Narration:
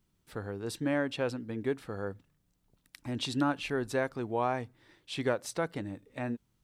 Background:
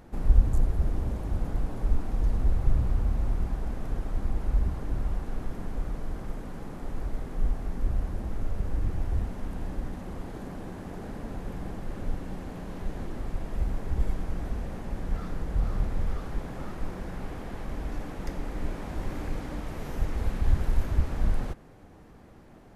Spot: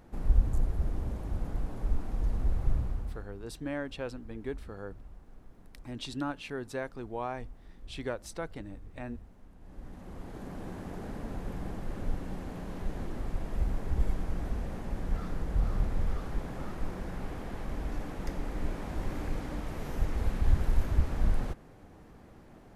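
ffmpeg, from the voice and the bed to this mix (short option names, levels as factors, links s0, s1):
-filter_complex "[0:a]adelay=2800,volume=0.531[s0];[1:a]volume=5.01,afade=t=out:st=2.72:d=0.55:silence=0.16788,afade=t=in:st=9.6:d=1.11:silence=0.11885[s1];[s0][s1]amix=inputs=2:normalize=0"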